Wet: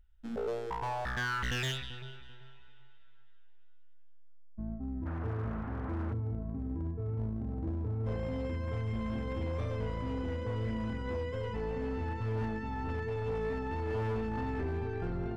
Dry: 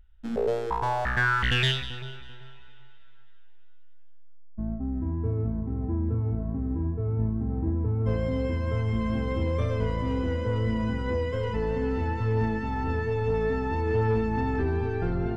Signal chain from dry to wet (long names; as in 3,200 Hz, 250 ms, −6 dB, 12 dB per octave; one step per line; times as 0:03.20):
0:05.05–0:06.12: noise in a band 230–1,500 Hz −39 dBFS
gain into a clipping stage and back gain 22.5 dB
level −7.5 dB